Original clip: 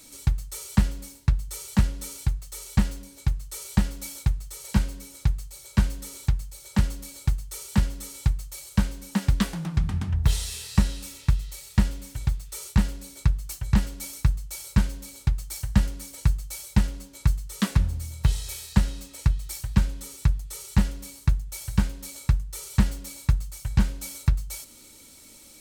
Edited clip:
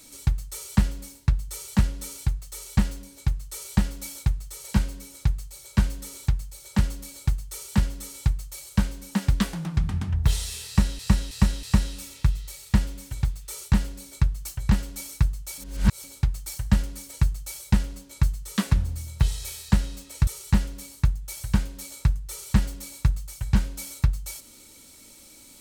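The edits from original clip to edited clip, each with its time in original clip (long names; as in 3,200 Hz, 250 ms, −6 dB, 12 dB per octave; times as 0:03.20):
0:10.67–0:10.99: repeat, 4 plays
0:14.62–0:15.08: reverse
0:19.31–0:20.51: remove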